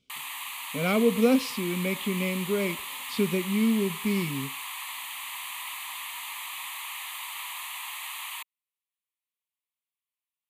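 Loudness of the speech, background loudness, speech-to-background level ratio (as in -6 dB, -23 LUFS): -27.0 LUFS, -35.0 LUFS, 8.0 dB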